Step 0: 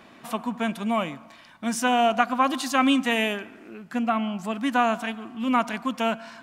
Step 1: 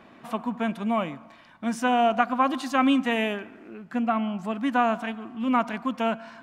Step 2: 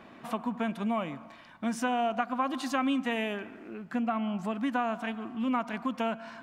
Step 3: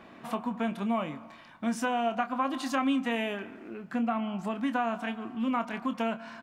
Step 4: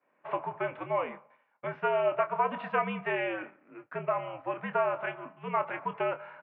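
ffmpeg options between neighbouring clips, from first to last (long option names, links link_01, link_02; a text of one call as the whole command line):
ffmpeg -i in.wav -af "highshelf=frequency=3500:gain=-11.5" out.wav
ffmpeg -i in.wav -af "acompressor=threshold=-29dB:ratio=2.5" out.wav
ffmpeg -i in.wav -filter_complex "[0:a]asplit=2[link_01][link_02];[link_02]adelay=26,volume=-10dB[link_03];[link_01][link_03]amix=inputs=2:normalize=0" out.wav
ffmpeg -i in.wav -af "highpass=frequency=390:width_type=q:width=0.5412,highpass=frequency=390:width_type=q:width=1.307,lowpass=frequency=2600:width_type=q:width=0.5176,lowpass=frequency=2600:width_type=q:width=0.7071,lowpass=frequency=2600:width_type=q:width=1.932,afreqshift=-76,agate=range=-33dB:threshold=-40dB:ratio=3:detection=peak,volume=2.5dB" out.wav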